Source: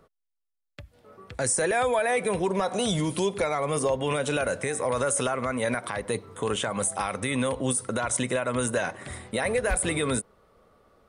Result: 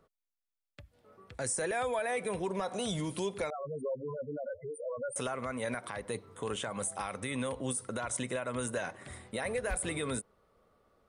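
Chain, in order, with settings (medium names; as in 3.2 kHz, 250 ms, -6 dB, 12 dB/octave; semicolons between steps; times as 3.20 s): 3.50–5.16 s: loudest bins only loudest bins 4; trim -8.5 dB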